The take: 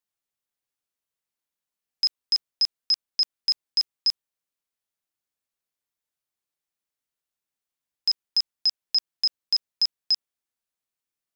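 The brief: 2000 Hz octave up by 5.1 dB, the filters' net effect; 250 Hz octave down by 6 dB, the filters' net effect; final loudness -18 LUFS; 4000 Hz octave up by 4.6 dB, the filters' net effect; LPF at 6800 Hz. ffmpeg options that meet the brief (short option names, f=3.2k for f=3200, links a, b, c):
-af "lowpass=6.8k,equalizer=f=250:t=o:g=-8.5,equalizer=f=2k:t=o:g=4,equalizer=f=4k:t=o:g=8,volume=1.5dB"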